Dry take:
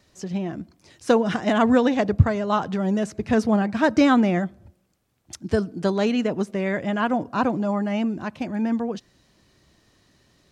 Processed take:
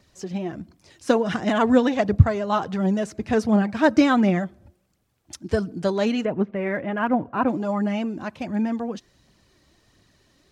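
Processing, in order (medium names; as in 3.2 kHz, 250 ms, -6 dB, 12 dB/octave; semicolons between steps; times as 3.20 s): 6.25–7.48 s: low-pass 2.6 kHz 24 dB/octave; phaser 1.4 Hz, delay 3.9 ms, feedback 37%; trim -1 dB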